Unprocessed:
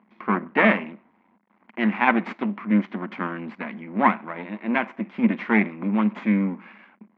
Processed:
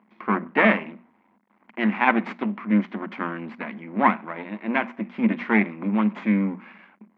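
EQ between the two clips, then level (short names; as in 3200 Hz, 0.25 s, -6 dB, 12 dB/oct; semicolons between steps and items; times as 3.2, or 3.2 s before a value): notches 60/120/180 Hz; notches 60/120/180/240 Hz; 0.0 dB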